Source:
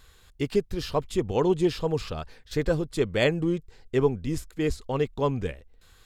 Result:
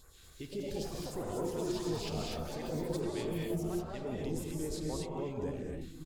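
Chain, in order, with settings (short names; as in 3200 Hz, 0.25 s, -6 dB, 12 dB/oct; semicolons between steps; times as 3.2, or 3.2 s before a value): low shelf 160 Hz -7.5 dB; reverse; compressor, threshold -32 dBFS, peak gain reduction 13.5 dB; reverse; limiter -31.5 dBFS, peak gain reduction 9 dB; phaser stages 2, 3.7 Hz, lowest notch 620–3300 Hz; non-linear reverb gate 0.28 s rising, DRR -1.5 dB; echoes that change speed 0.24 s, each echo +6 st, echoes 3, each echo -6 dB; outdoor echo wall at 250 m, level -7 dB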